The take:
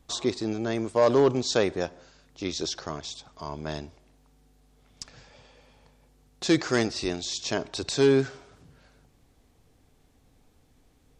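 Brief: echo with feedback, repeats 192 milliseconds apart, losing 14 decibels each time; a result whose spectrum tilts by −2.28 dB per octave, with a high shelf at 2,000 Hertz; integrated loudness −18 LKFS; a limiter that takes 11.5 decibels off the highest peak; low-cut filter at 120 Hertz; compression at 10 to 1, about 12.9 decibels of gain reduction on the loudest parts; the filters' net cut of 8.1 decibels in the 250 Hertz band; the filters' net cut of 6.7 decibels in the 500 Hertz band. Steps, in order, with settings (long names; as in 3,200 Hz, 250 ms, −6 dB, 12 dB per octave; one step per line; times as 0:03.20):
high-pass filter 120 Hz
parametric band 250 Hz −8.5 dB
parametric band 500 Hz −6 dB
high-shelf EQ 2,000 Hz +6.5 dB
downward compressor 10 to 1, threshold −33 dBFS
brickwall limiter −28 dBFS
repeating echo 192 ms, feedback 20%, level −14 dB
level +22 dB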